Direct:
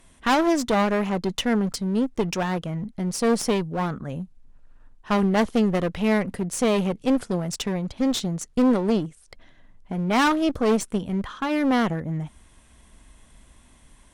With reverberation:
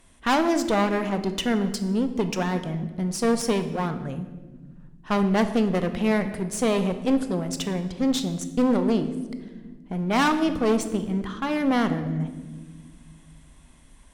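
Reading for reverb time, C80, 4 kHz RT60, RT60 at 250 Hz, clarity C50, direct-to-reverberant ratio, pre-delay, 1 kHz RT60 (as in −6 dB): 1.4 s, 12.5 dB, 0.95 s, 2.6 s, 11.0 dB, 9.0 dB, 22 ms, 1.1 s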